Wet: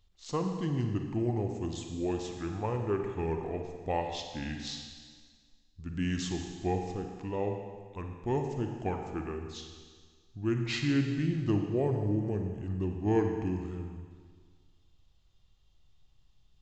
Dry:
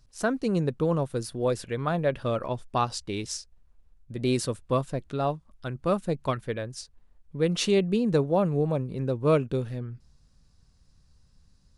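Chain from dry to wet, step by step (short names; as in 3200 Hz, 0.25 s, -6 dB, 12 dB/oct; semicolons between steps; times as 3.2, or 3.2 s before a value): Schroeder reverb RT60 1.2 s, combs from 27 ms, DRR 4 dB; wide varispeed 0.709×; gain -6.5 dB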